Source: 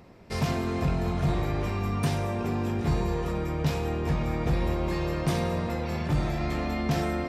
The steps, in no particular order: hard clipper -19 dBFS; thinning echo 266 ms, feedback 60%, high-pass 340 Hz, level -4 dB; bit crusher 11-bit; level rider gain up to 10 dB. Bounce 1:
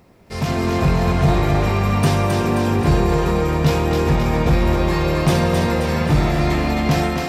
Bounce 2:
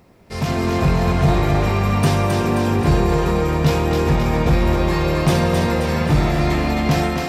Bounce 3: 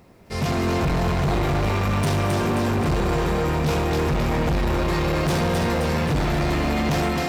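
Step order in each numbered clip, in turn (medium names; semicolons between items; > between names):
hard clipper > level rider > bit crusher > thinning echo; hard clipper > level rider > thinning echo > bit crusher; bit crusher > level rider > thinning echo > hard clipper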